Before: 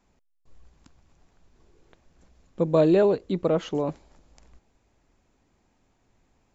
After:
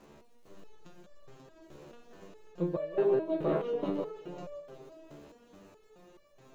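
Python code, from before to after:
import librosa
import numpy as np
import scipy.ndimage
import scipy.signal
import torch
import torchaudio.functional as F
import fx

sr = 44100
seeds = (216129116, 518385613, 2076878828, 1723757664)

y = fx.bin_compress(x, sr, power=0.6)
y = fx.env_lowpass_down(y, sr, base_hz=2100.0, full_db=-17.0)
y = fx.echo_heads(y, sr, ms=179, heads='first and third', feedback_pct=41, wet_db=-7.0)
y = fx.dmg_crackle(y, sr, seeds[0], per_s=210.0, level_db=-46.0)
y = fx.resonator_held(y, sr, hz=4.7, low_hz=73.0, high_hz=580.0)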